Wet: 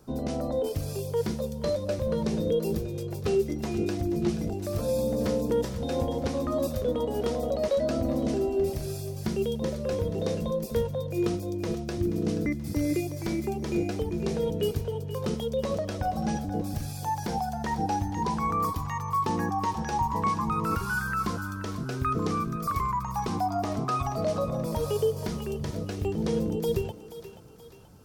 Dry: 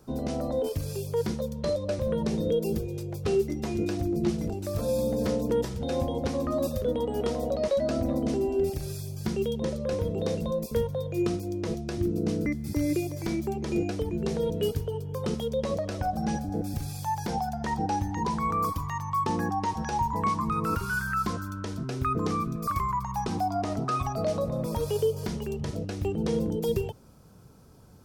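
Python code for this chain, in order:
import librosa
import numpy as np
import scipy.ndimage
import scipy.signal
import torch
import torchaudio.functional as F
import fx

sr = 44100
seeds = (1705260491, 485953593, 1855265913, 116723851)

y = fx.echo_thinned(x, sr, ms=480, feedback_pct=51, hz=420.0, wet_db=-12.0)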